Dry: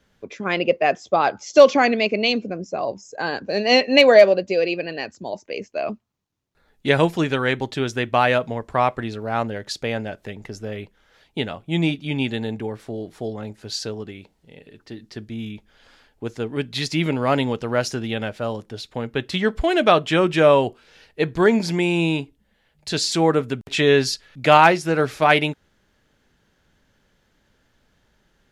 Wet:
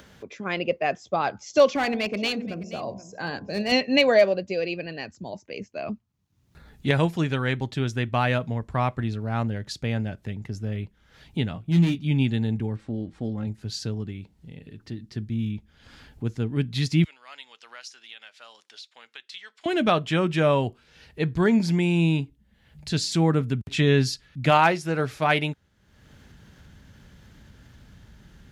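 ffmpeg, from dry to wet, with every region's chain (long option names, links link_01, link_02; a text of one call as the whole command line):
ffmpeg -i in.wav -filter_complex "[0:a]asettb=1/sr,asplit=3[link_01][link_02][link_03];[link_01]atrim=end=1.694[link_04];[link_02]atrim=start=1.69:end=3.72,asetpts=PTS-STARTPTS,afade=type=in:duration=0.004:curve=qsin,afade=type=out:start_time=2.026:duration=0.004:curve=qsin,bandreject=frequency=60.45:width_type=h:width=4,bandreject=frequency=120.9:width_type=h:width=4,bandreject=frequency=181.35:width_type=h:width=4,bandreject=frequency=241.8:width_type=h:width=4,bandreject=frequency=302.25:width_type=h:width=4,bandreject=frequency=362.7:width_type=h:width=4,bandreject=frequency=423.15:width_type=h:width=4,bandreject=frequency=483.6:width_type=h:width=4,bandreject=frequency=544.05:width_type=h:width=4,bandreject=frequency=604.5:width_type=h:width=4,bandreject=frequency=664.95:width_type=h:width=4,bandreject=frequency=725.4:width_type=h:width=4,bandreject=frequency=785.85:width_type=h:width=4,bandreject=frequency=846.3:width_type=h:width=4,bandreject=frequency=906.75:width_type=h:width=4,bandreject=frequency=967.2:width_type=h:width=4,bandreject=frequency=1027.65:width_type=h:width=4,bandreject=frequency=1088.1:width_type=h:width=4,bandreject=frequency=1148.55:width_type=h:width=4,aeval=exprs='clip(val(0),-1,0.178)':channel_layout=same,aecho=1:1:478:0.15,atrim=end_sample=89523[link_05];[link_03]atrim=start=3.716[link_06];[link_04][link_05]acrossfade=duration=0.004:curve1=hsin:curve2=qsin[link_07];[link_07][link_06]acrossfade=duration=0.004:curve1=qsin:curve2=hsin,asettb=1/sr,asplit=3[link_08][link_09][link_10];[link_08]atrim=end=11.534[link_11];[link_09]atrim=start=11.53:end=12.04,asetpts=PTS-STARTPTS,afade=type=in:duration=0.004:curve=qsin,afade=type=out:start_time=0.506:duration=0.004:curve=qsin,asoftclip=type=hard:threshold=-19.5dB,asplit=2[link_12][link_13];[link_13]adelay=17,volume=-6.5dB[link_14];[link_12][link_14]amix=inputs=2:normalize=0,atrim=end_sample=22491[link_15];[link_10]atrim=start=12.036[link_16];[link_11][link_15]acrossfade=duration=0.004:curve1=hsin:curve2=qsin[link_17];[link_17][link_16]acrossfade=duration=0.004:curve1=qsin:curve2=hsin,asettb=1/sr,asplit=3[link_18][link_19][link_20];[link_18]atrim=end=12.764[link_21];[link_19]atrim=start=12.76:end=13.47,asetpts=PTS-STARTPTS,afade=type=in:duration=0.004:curve=qsin,afade=type=out:start_time=0.706:duration=0.004:curve=qsin,equalizer=frequency=8300:width_type=o:width=0.26:gain=7,aecho=1:1:3.7:0.41,atrim=end_sample=31311,adynamicsmooth=sensitivity=7:basefreq=4400[link_22];[link_20]atrim=start=13.466[link_23];[link_21][link_22]acrossfade=duration=0.004:curve1=hsin:curve2=qsin[link_24];[link_24][link_23]acrossfade=duration=0.004:curve1=qsin:curve2=hsin,asettb=1/sr,asplit=3[link_25][link_26][link_27];[link_25]atrim=end=17.044[link_28];[link_26]atrim=start=17.04:end=19.66,asetpts=PTS-STARTPTS,afade=type=in:duration=0.004:curve=qsin,afade=type=out:start_time=2.616:duration=0.004:curve=qsin,highpass=660,lowpass=4700,aderivative[link_29];[link_27]atrim=start=19.656[link_30];[link_28][link_29]acrossfade=duration=0.004:curve1=hsin:curve2=qsin[link_31];[link_31][link_30]acrossfade=duration=0.004:curve1=qsin:curve2=hsin,highpass=54,asubboost=boost=5.5:cutoff=210,acompressor=mode=upward:threshold=-31dB:ratio=2.5,volume=-5.5dB" out.wav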